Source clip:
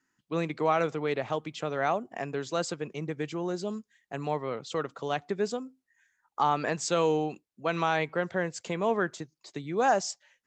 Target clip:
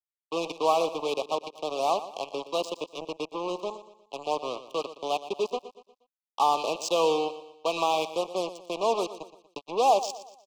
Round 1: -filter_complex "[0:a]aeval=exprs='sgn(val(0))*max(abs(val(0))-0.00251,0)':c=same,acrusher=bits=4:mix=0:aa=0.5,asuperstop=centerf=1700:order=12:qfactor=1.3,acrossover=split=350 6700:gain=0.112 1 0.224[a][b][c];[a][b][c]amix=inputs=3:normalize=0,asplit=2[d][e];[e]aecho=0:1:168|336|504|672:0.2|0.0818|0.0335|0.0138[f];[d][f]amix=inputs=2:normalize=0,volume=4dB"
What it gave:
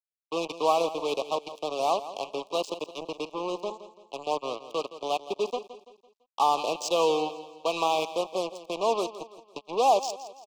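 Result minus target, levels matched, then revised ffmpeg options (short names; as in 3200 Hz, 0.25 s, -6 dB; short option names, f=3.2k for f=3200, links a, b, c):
echo 49 ms late
-filter_complex "[0:a]aeval=exprs='sgn(val(0))*max(abs(val(0))-0.00251,0)':c=same,acrusher=bits=4:mix=0:aa=0.5,asuperstop=centerf=1700:order=12:qfactor=1.3,acrossover=split=350 6700:gain=0.112 1 0.224[a][b][c];[a][b][c]amix=inputs=3:normalize=0,asplit=2[d][e];[e]aecho=0:1:119|238|357|476:0.2|0.0818|0.0335|0.0138[f];[d][f]amix=inputs=2:normalize=0,volume=4dB"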